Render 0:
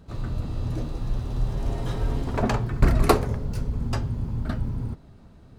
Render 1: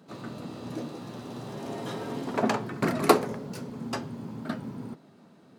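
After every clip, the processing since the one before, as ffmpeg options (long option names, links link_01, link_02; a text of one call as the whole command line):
ffmpeg -i in.wav -af "highpass=frequency=180:width=0.5412,highpass=frequency=180:width=1.3066" out.wav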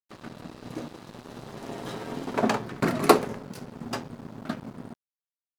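ffmpeg -i in.wav -af "aeval=exprs='sgn(val(0))*max(abs(val(0))-0.00891,0)':channel_layout=same,volume=2.5dB" out.wav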